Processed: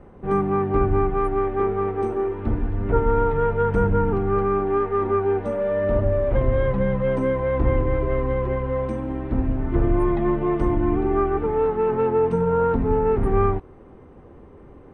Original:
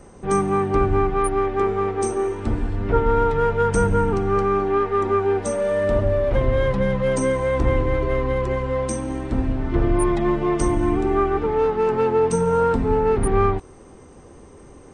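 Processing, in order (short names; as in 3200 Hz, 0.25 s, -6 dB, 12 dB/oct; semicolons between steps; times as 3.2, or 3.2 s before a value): air absorption 500 m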